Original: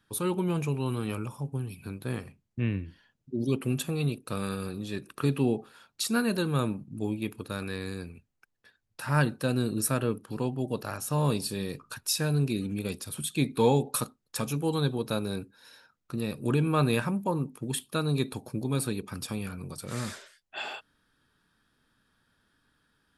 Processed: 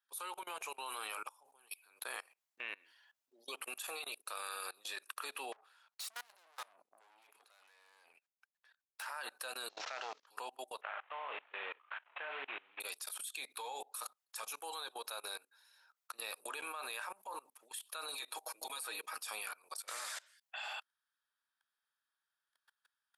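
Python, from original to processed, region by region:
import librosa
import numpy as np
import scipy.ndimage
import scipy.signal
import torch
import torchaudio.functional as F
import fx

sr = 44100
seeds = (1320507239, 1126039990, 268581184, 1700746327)

y = fx.chain(x, sr, fx.high_shelf(hz=7800.0, db=-10.5),
    fx.tube_stage(drive_db=41.0, bias=0.6), at=(5.52, 9.06))
y = fx.chain(y, sr, fx.cvsd(bps=32000),
    fx.transformer_sat(knee_hz=580.0), at=(9.69, 10.27))
y = fx.chain(y, sr, fx.cvsd(bps=16000),
    fx.highpass(hz=210.0, slope=12),
    fx.doubler(ms=36.0, db=-9.5), at=(10.81, 12.8))
y = fx.chain(y, sr, fx.comb(ms=6.3, depth=0.82),
    fx.band_squash(depth_pct=70), at=(18.08, 19.2))
y = scipy.signal.sosfilt(scipy.signal.butter(4, 720.0, 'highpass', fs=sr, output='sos'), y)
y = fx.high_shelf(y, sr, hz=10000.0, db=6.5)
y = fx.level_steps(y, sr, step_db=24)
y = F.gain(torch.from_numpy(y), 4.5).numpy()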